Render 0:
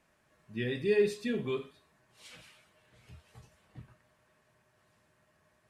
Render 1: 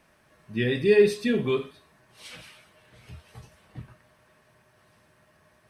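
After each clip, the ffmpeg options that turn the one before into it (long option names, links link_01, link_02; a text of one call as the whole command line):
ffmpeg -i in.wav -af "bandreject=frequency=7100:width=7.2,volume=8.5dB" out.wav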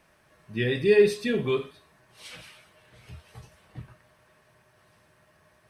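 ffmpeg -i in.wav -af "equalizer=frequency=240:width_type=o:width=0.47:gain=-4" out.wav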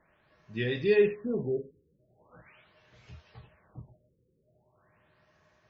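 ffmpeg -i in.wav -af "afftfilt=real='re*lt(b*sr/1024,530*pow(7600/530,0.5+0.5*sin(2*PI*0.41*pts/sr)))':imag='im*lt(b*sr/1024,530*pow(7600/530,0.5+0.5*sin(2*PI*0.41*pts/sr)))':win_size=1024:overlap=0.75,volume=-4.5dB" out.wav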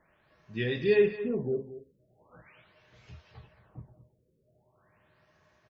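ffmpeg -i in.wav -af "aecho=1:1:218:0.2" out.wav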